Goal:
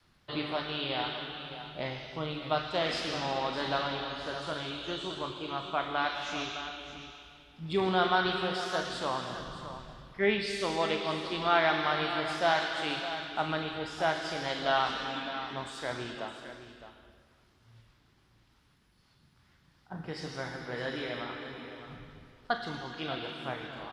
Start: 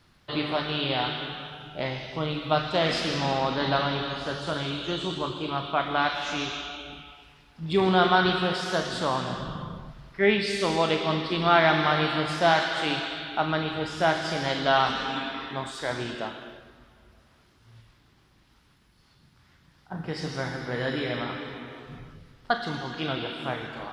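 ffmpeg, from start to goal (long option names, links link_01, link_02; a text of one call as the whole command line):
ffmpeg -i in.wav -filter_complex "[0:a]adynamicequalizer=threshold=0.00708:dfrequency=160:dqfactor=0.97:tfrequency=160:tqfactor=0.97:attack=5:release=100:ratio=0.375:range=3.5:mode=cutabove:tftype=bell,asplit=2[link_01][link_02];[link_02]aecho=0:1:613:0.251[link_03];[link_01][link_03]amix=inputs=2:normalize=0,aresample=32000,aresample=44100,volume=-5.5dB" out.wav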